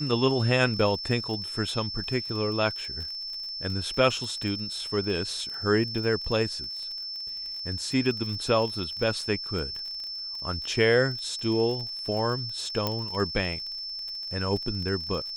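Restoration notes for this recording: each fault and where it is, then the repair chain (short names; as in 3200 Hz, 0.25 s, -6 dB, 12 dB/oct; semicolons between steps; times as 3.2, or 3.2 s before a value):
crackle 35/s -34 dBFS
tone 5300 Hz -33 dBFS
12.87 pop -12 dBFS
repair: de-click; notch 5300 Hz, Q 30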